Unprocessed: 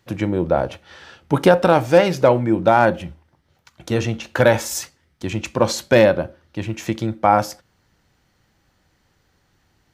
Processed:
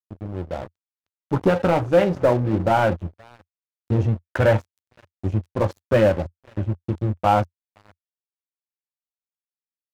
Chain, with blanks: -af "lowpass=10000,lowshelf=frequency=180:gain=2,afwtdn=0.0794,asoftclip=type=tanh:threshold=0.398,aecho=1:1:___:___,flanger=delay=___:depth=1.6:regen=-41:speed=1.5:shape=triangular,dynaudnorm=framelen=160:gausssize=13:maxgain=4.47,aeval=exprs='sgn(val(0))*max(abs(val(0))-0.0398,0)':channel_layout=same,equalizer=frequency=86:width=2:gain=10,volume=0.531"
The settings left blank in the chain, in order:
517, 0.0944, 9.6